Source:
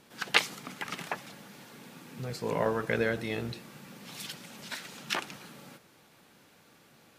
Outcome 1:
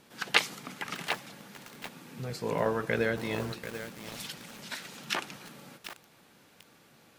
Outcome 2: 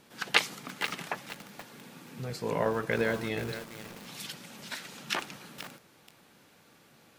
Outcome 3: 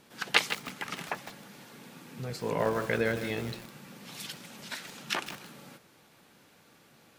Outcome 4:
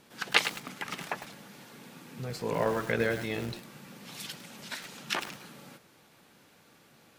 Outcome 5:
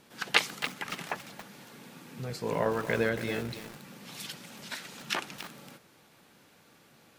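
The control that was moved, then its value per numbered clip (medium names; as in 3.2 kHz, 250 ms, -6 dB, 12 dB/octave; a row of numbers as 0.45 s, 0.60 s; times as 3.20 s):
bit-crushed delay, time: 739 ms, 478 ms, 158 ms, 104 ms, 278 ms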